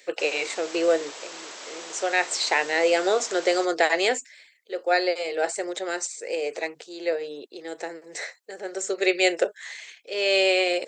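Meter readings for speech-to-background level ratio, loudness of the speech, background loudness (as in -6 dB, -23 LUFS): 13.5 dB, -25.0 LUFS, -38.5 LUFS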